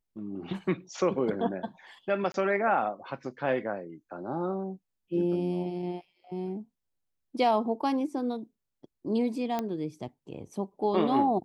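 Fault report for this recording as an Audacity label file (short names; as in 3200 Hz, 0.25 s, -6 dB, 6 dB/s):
2.320000	2.340000	gap 22 ms
9.590000	9.590000	pop -17 dBFS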